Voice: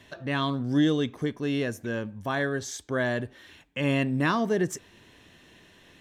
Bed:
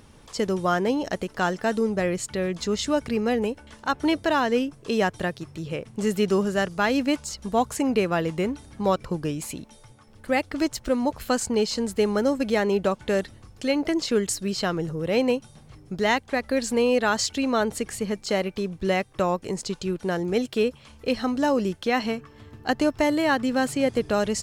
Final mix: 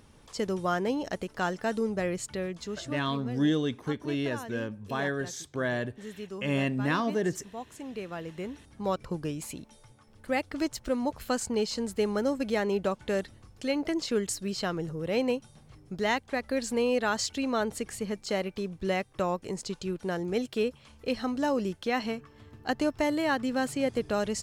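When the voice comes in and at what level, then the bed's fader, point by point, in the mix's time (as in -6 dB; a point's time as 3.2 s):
2.65 s, -3.0 dB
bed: 2.33 s -5.5 dB
3.18 s -18 dB
7.71 s -18 dB
9.1 s -5.5 dB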